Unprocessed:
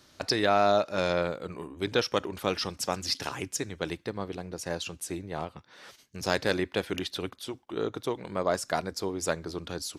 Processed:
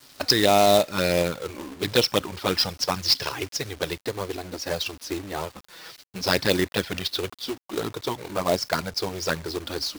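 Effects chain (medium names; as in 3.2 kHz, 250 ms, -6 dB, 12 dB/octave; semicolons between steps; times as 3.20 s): touch-sensitive flanger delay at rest 7.7 ms, full sweep at -21.5 dBFS; resonant high shelf 6.5 kHz -9 dB, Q 3; companded quantiser 4-bit; trim +7 dB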